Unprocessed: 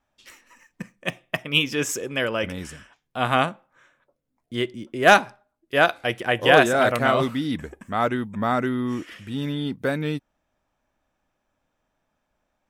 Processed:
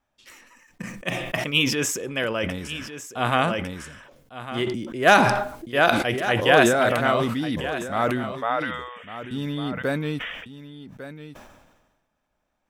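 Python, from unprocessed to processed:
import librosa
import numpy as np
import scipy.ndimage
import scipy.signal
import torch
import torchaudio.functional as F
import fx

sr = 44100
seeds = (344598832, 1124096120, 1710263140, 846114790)

y = fx.brickwall_bandpass(x, sr, low_hz=430.0, high_hz=3700.0, at=(8.32, 9.31))
y = y + 10.0 ** (-13.0 / 20.0) * np.pad(y, (int(1151 * sr / 1000.0), 0))[:len(y)]
y = fx.sustainer(y, sr, db_per_s=45.0)
y = F.gain(torch.from_numpy(y), -1.5).numpy()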